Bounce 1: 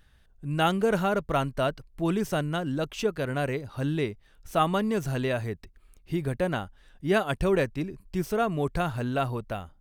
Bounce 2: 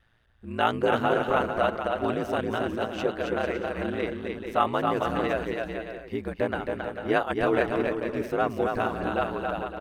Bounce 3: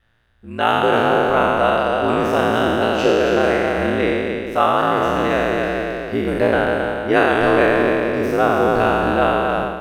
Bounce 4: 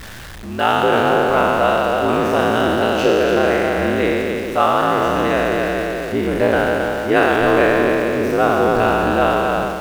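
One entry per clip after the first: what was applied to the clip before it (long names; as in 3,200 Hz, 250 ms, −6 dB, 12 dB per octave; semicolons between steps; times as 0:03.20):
ring modulation 57 Hz; bass and treble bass −10 dB, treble −13 dB; bouncing-ball delay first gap 270 ms, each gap 0.65×, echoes 5; level +4 dB
peak hold with a decay on every bin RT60 2.44 s; automatic gain control gain up to 8 dB
converter with a step at zero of −28.5 dBFS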